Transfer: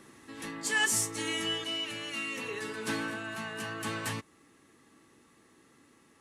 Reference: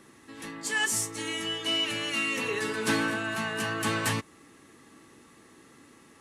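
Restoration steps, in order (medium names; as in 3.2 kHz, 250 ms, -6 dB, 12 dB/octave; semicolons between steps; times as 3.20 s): gain correction +7 dB, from 1.64 s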